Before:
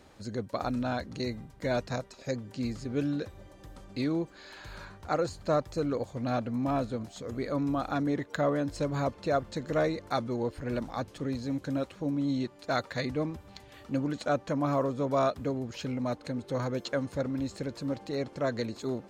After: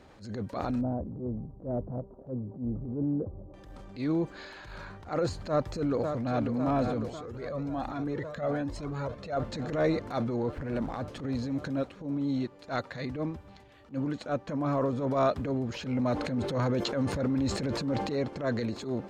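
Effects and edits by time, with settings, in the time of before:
0:00.81–0:03.54: Gaussian smoothing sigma 12 samples
0:05.35–0:06.45: delay throw 550 ms, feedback 80%, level −10 dB
0:07.10–0:09.37: flanger whose copies keep moving one way rising 1.2 Hz
0:10.49–0:11.08: running median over 9 samples
0:11.83–0:14.93: expander for the loud parts, over −38 dBFS
0:15.86–0:18.23: envelope flattener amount 50%
whole clip: low-pass filter 3,100 Hz 6 dB per octave; transient designer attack −11 dB, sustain +5 dB; level +2.5 dB

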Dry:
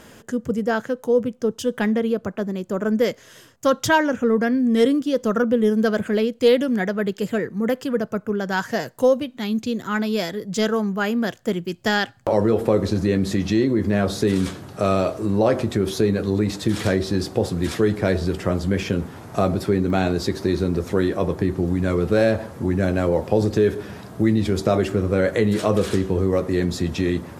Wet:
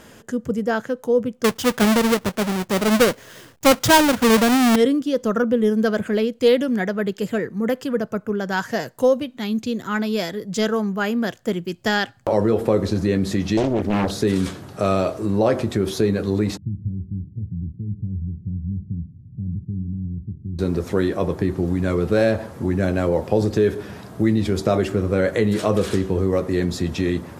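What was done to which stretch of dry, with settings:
0:01.44–0:04.76: each half-wave held at its own peak
0:13.57–0:14.11: highs frequency-modulated by the lows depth 0.94 ms
0:16.57–0:20.59: inverse Chebyshev low-pass filter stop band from 1,000 Hz, stop band 80 dB

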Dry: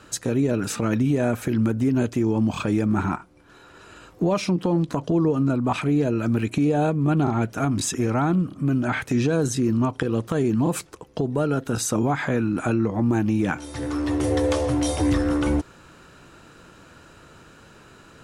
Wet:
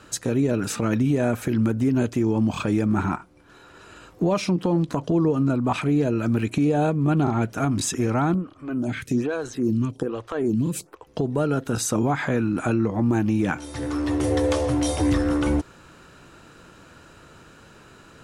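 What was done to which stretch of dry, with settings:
0:08.34–0:11.07: phaser with staggered stages 1.2 Hz

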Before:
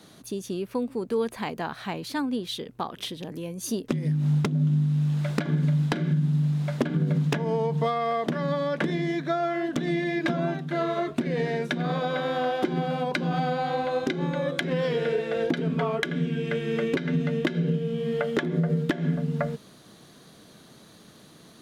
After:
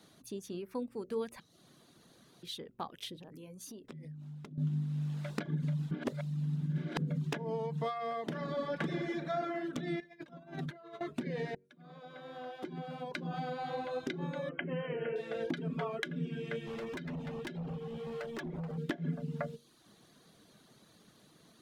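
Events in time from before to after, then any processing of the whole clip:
0:01.40–0:02.43: fill with room tone
0:03.18–0:04.58: downward compressor 5 to 1, threshold −35 dBFS
0:05.91–0:06.98: reverse
0:08.20–0:09.38: thrown reverb, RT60 2.4 s, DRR 3 dB
0:10.00–0:11.01: compressor whose output falls as the input rises −34 dBFS, ratio −0.5
0:11.55–0:13.77: fade in
0:14.49–0:15.16: linear-phase brick-wall low-pass 3,200 Hz
0:16.66–0:18.78: gain into a clipping stage and back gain 27 dB
whole clip: hum removal 47.01 Hz, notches 13; reverb reduction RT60 0.57 s; level −9 dB

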